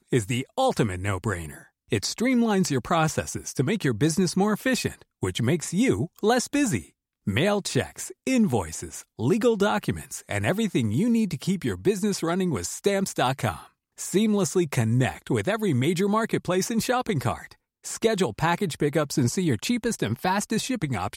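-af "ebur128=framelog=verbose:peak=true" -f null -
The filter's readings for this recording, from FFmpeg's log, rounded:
Integrated loudness:
  I:         -25.2 LUFS
  Threshold: -35.4 LUFS
Loudness range:
  LRA:         1.3 LU
  Threshold: -45.3 LUFS
  LRA low:   -25.8 LUFS
  LRA high:  -24.5 LUFS
True peak:
  Peak:       -9.1 dBFS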